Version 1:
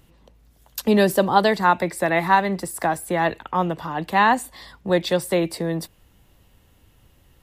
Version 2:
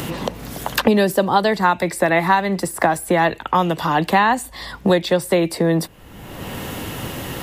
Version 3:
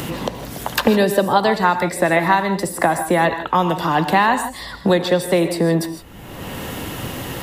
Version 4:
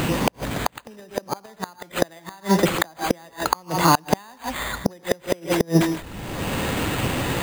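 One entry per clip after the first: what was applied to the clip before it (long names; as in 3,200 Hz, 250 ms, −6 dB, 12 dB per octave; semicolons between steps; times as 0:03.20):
multiband upward and downward compressor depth 100%; level +3 dB
reverb whose tail is shaped and stops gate 180 ms rising, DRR 9 dB
bad sample-rate conversion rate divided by 8×, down none, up hold; gate with flip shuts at −8 dBFS, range −33 dB; level +4 dB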